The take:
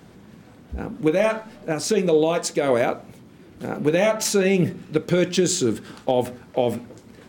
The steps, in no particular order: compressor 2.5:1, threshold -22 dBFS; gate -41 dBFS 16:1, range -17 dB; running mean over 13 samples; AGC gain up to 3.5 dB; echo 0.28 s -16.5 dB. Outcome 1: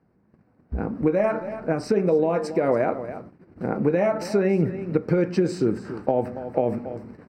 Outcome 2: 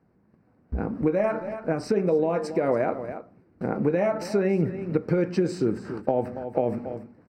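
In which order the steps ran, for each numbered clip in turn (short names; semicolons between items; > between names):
echo > compressor > AGC > gate > running mean; gate > echo > AGC > compressor > running mean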